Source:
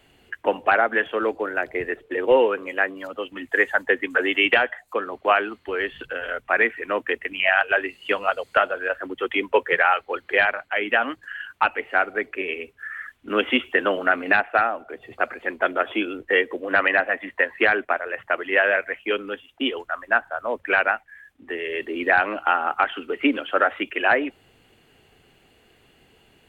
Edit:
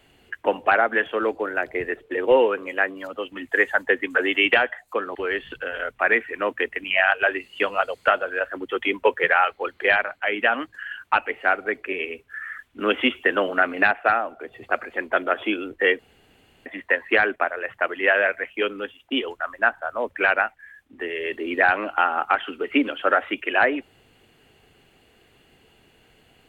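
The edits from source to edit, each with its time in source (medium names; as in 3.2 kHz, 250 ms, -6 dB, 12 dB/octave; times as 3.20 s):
5.15–5.64 s: delete
16.48–17.15 s: room tone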